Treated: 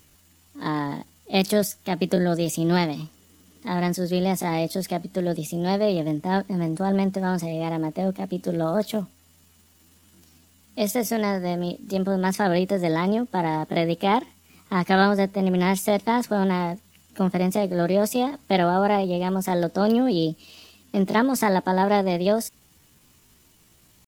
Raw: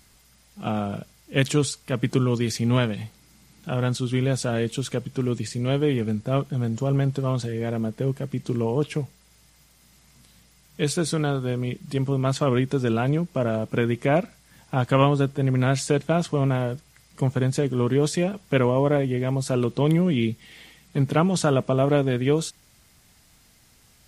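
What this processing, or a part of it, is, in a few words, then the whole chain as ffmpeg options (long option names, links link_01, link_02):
chipmunk voice: -filter_complex "[0:a]asettb=1/sr,asplit=3[link_01][link_02][link_03];[link_01]atrim=end=8.634[link_04];[link_02]atrim=start=8.63:end=9.03,asetpts=PTS-STARTPTS,afade=type=in:duration=0.004:curve=qsin,afade=type=out:start_time=0.396:duration=0.004:curve=qsin,highshelf=frequency=4700:gain=5.5[link_05];[link_03]atrim=start=9.026[link_06];[link_04][link_05]acrossfade=duration=0.004:curve1=hsin:curve2=qsin[link_07];[link_07][link_06]acrossfade=duration=0.004:curve1=qsin:curve2=hsin,asetrate=62367,aresample=44100,atempo=0.707107"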